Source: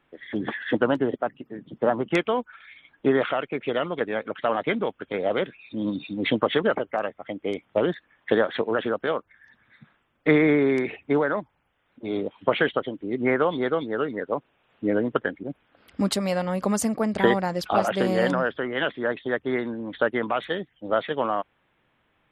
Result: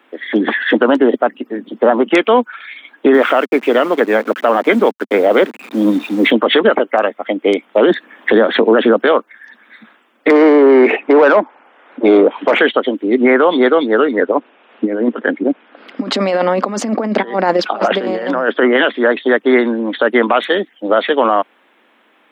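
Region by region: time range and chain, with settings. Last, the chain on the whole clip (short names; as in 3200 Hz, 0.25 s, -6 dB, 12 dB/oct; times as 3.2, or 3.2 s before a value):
3.14–6.31 level-crossing sampler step -41 dBFS + HPF 180 Hz + tone controls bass +4 dB, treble -11 dB
7.9–9.02 low shelf 370 Hz +10.5 dB + three-band squash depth 40%
10.3–12.59 treble ducked by the level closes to 1700 Hz, closed at -18.5 dBFS + high shelf 2300 Hz -7 dB + overdrive pedal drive 22 dB, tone 1300 Hz, clips at -7 dBFS
14.19–18.82 negative-ratio compressor -27 dBFS, ratio -0.5 + air absorption 190 m
whole clip: steep high-pass 220 Hz 48 dB/oct; maximiser +16.5 dB; gain -1 dB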